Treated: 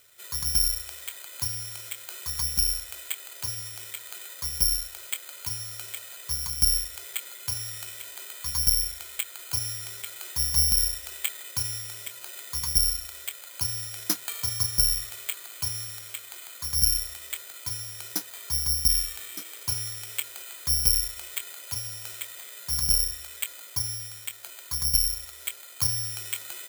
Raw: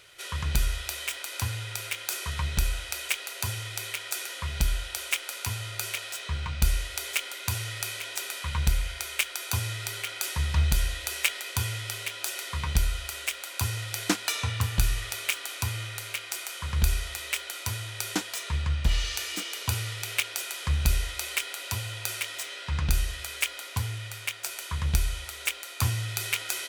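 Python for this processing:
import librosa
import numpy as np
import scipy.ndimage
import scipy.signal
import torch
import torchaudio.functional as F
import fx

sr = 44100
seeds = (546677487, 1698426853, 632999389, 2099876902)

y = scipy.signal.sosfilt(scipy.signal.butter(2, 3100.0, 'lowpass', fs=sr, output='sos'), x)
y = (np.kron(scipy.signal.resample_poly(y, 1, 8), np.eye(8)[0]) * 8)[:len(y)]
y = y * 10.0 ** (-8.5 / 20.0)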